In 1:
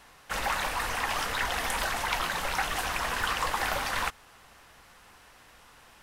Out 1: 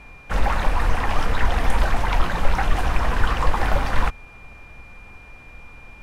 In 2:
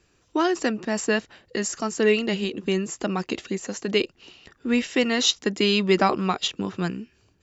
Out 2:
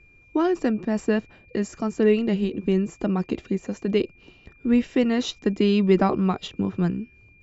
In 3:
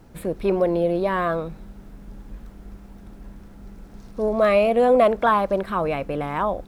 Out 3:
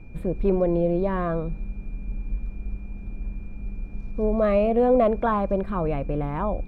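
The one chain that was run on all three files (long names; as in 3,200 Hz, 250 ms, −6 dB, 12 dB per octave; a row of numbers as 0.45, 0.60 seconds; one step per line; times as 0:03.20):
steady tone 2,400 Hz −46 dBFS
spectral tilt −3.5 dB per octave
loudness normalisation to −24 LKFS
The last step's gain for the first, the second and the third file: +5.0, −3.5, −6.0 decibels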